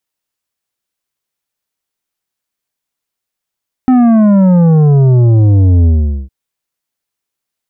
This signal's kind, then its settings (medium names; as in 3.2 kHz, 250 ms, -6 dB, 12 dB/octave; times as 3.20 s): sub drop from 260 Hz, over 2.41 s, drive 9 dB, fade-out 0.43 s, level -5.5 dB